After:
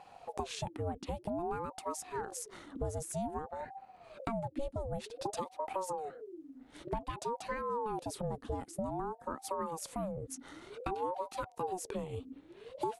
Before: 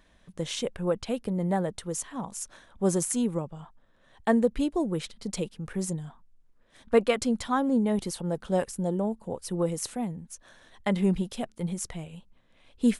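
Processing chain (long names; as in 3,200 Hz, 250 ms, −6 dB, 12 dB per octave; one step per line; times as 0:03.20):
soft clipping −12.5 dBFS, distortion −23 dB
downward compressor 8 to 1, threshold −40 dBFS, peak gain reduction 21.5 dB
low-shelf EQ 440 Hz +6.5 dB
ring modulator whose carrier an LFO sweeps 520 Hz, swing 50%, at 0.53 Hz
level +3.5 dB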